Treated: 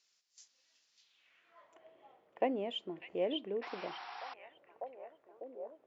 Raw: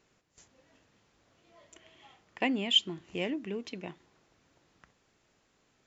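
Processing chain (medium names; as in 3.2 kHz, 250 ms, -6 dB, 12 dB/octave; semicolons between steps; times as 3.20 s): repeats whose band climbs or falls 598 ms, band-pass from 3 kHz, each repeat -0.7 oct, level -1 dB; painted sound noise, 3.62–4.34 s, 700–5700 Hz -36 dBFS; band-pass sweep 5.1 kHz -> 550 Hz, 0.98–1.92 s; trim +5 dB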